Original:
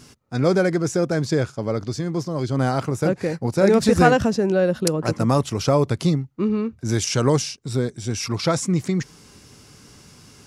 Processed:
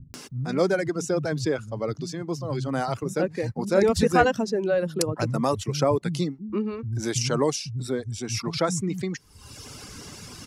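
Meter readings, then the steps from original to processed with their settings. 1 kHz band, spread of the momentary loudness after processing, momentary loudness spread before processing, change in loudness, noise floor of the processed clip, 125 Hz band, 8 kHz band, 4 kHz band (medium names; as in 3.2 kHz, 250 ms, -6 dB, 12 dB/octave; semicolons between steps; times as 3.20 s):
-3.0 dB, 16 LU, 9 LU, -4.5 dB, -48 dBFS, -6.5 dB, -3.0 dB, -3.0 dB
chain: reverb removal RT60 1.1 s; upward compressor, threshold -26 dBFS; bands offset in time lows, highs 140 ms, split 170 Hz; trim -2.5 dB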